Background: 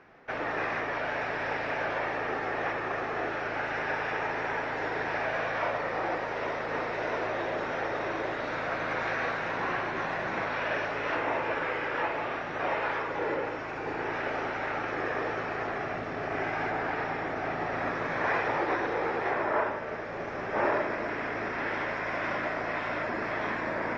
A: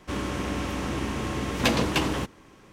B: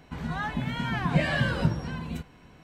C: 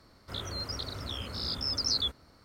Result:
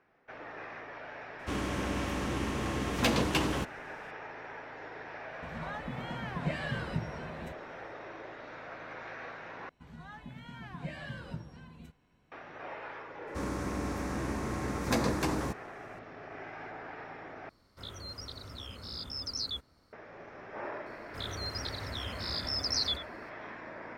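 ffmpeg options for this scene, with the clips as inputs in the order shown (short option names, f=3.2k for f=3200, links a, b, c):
-filter_complex "[1:a]asplit=2[a][b];[2:a]asplit=2[c][d];[3:a]asplit=2[e][f];[0:a]volume=-13dB[g];[a]volume=15.5dB,asoftclip=hard,volume=-15.5dB[h];[b]equalizer=f=3k:w=2.6:g=-14[i];[f]asplit=2[j][k];[k]adelay=87.46,volume=-12dB,highshelf=f=4k:g=-1.97[l];[j][l]amix=inputs=2:normalize=0[m];[g]asplit=3[n][o][p];[n]atrim=end=9.694[q];[d]atrim=end=2.63,asetpts=PTS-STARTPTS,volume=-16.5dB[r];[o]atrim=start=12.316:end=17.494[s];[e]atrim=end=2.44,asetpts=PTS-STARTPTS,volume=-7dB[t];[p]atrim=start=19.926[u];[h]atrim=end=2.72,asetpts=PTS-STARTPTS,volume=-4dB,afade=t=in:d=0.004:c=hsin,afade=t=out:st=2.716:d=0.004:c=hsin,adelay=1390[v];[c]atrim=end=2.63,asetpts=PTS-STARTPTS,volume=-10dB,afade=t=in:d=0.004:c=hsin,afade=t=out:st=2.626:d=0.004:c=hsin,adelay=5310[w];[i]atrim=end=2.72,asetpts=PTS-STARTPTS,volume=-5dB,afade=t=in:d=0.004:c=hsin,afade=t=out:st=2.716:d=0.004:c=hsin,adelay=13270[x];[m]atrim=end=2.44,asetpts=PTS-STARTPTS,volume=-2dB,afade=t=in:d=0.004:c=hsin,afade=t=out:st=2.436:d=0.004:c=hsin,adelay=20860[y];[q][r]acrossfade=d=0.004:c1=hsin:c2=hsin[z];[z][s]acrossfade=d=0.004:c1=hsin:c2=hsin[aa];[aa][t]acrossfade=d=0.004:c1=hsin:c2=hsin[ab];[ab][u]acrossfade=d=0.004:c1=hsin:c2=hsin[ac];[ac][v][w][x][y]amix=inputs=5:normalize=0"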